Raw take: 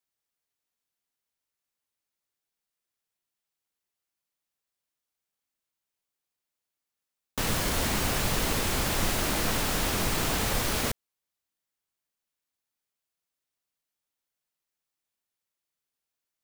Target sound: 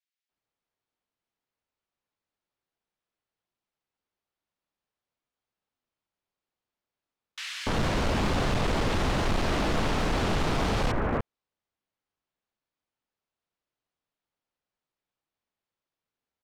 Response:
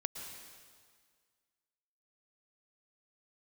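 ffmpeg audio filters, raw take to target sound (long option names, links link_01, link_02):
-filter_complex "[0:a]adynamicsmooth=sensitivity=0.5:basefreq=3200,acrossover=split=1900[link_01][link_02];[link_01]adelay=290[link_03];[link_03][link_02]amix=inputs=2:normalize=0,volume=26.5dB,asoftclip=hard,volume=-26.5dB,volume=5dB"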